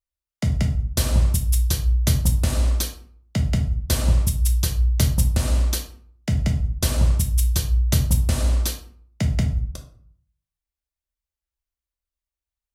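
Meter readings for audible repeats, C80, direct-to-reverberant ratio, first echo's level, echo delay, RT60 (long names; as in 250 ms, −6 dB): no echo audible, 14.0 dB, 2.0 dB, no echo audible, no echo audible, 0.55 s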